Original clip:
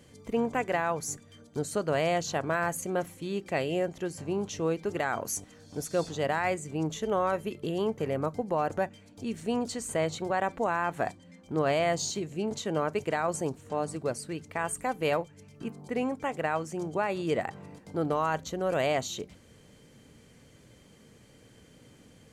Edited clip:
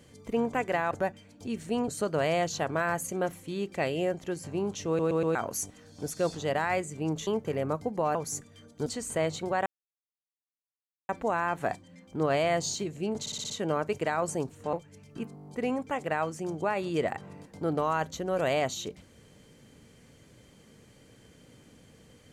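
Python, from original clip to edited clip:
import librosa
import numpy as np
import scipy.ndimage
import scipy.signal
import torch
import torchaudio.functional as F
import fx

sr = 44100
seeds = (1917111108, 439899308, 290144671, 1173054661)

y = fx.edit(x, sr, fx.swap(start_s=0.91, length_s=0.71, other_s=8.68, other_length_s=0.97),
    fx.stutter_over(start_s=4.61, slice_s=0.12, count=4),
    fx.cut(start_s=7.01, length_s=0.79),
    fx.insert_silence(at_s=10.45, length_s=1.43),
    fx.stutter(start_s=12.56, slice_s=0.06, count=6),
    fx.cut(start_s=13.79, length_s=1.39),
    fx.stutter(start_s=15.8, slice_s=0.02, count=7), tone=tone)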